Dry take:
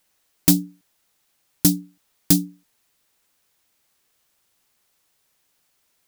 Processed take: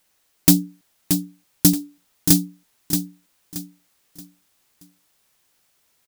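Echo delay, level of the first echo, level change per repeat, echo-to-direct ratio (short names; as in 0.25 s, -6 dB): 0.627 s, -7.0 dB, -10.0 dB, -6.5 dB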